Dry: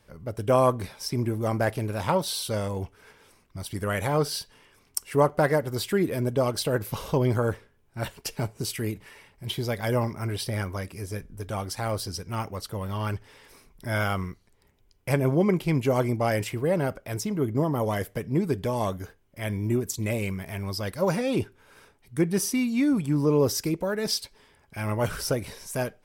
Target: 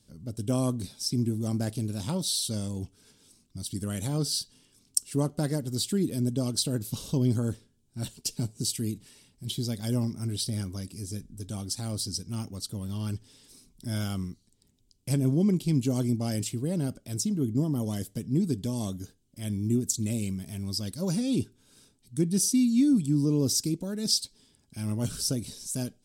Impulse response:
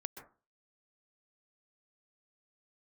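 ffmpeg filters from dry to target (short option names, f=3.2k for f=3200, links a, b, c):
-af "equalizer=f=125:t=o:w=1:g=4,equalizer=f=250:t=o:w=1:g=10,equalizer=f=500:t=o:w=1:g=-6,equalizer=f=1k:t=o:w=1:g=-8,equalizer=f=2k:t=o:w=1:g=-11,equalizer=f=4k:t=o:w=1:g=8,equalizer=f=8k:t=o:w=1:g=12,volume=-6.5dB"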